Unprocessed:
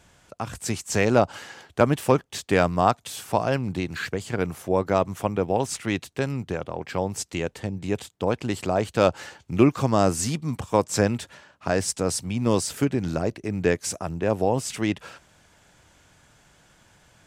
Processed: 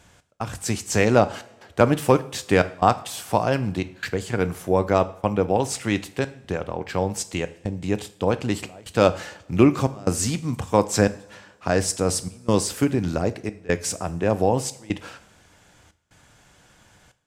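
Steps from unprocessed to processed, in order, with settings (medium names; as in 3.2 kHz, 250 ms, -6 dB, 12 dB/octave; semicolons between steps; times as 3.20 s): trance gate "xx..xxxxxxxx" 149 bpm -24 dB; two-slope reverb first 0.48 s, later 1.9 s, from -19 dB, DRR 12 dB; trim +2 dB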